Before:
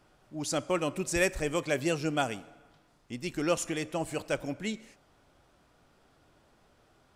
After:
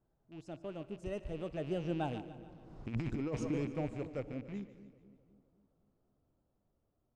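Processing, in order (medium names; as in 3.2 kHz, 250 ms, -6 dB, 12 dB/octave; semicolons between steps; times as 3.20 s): rattle on loud lows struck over -43 dBFS, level -23 dBFS; Doppler pass-by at 2.84 s, 27 m/s, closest 2.2 m; FFT filter 120 Hz 0 dB, 680 Hz -7 dB, 2.1 kHz -20 dB; two-band feedback delay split 490 Hz, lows 256 ms, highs 146 ms, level -14.5 dB; compressor with a negative ratio -52 dBFS, ratio -1; low-pass 6.1 kHz; trim +18 dB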